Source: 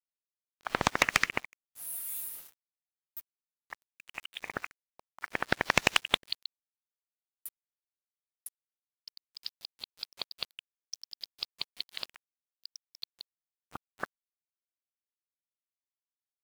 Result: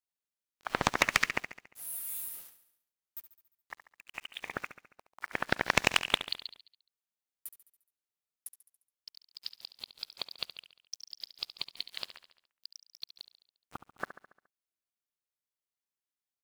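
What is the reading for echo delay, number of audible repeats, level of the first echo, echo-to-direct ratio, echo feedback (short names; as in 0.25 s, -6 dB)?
70 ms, 5, -13.0 dB, -11.5 dB, 56%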